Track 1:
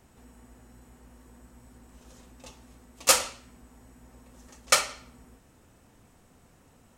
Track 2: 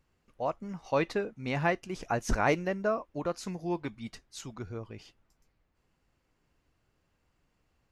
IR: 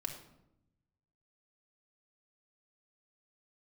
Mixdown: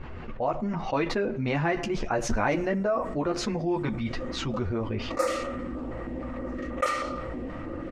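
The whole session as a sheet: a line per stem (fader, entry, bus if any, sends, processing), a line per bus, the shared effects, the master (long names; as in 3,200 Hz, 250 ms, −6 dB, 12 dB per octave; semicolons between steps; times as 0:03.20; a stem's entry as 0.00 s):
−14.5 dB, 2.10 s, send −12 dB, hollow resonant body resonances 320/520/1,200/1,900 Hz, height 16 dB; notch on a step sequencer 6.3 Hz 260–4,700 Hz
0.0 dB, 0.00 s, send −18.5 dB, multi-voice chorus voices 6, 0.67 Hz, delay 11 ms, depth 3.1 ms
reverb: on, RT60 0.85 s, pre-delay 3 ms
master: low-pass that shuts in the quiet parts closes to 2,800 Hz, open at −27.5 dBFS; high-shelf EQ 4,100 Hz −11 dB; envelope flattener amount 70%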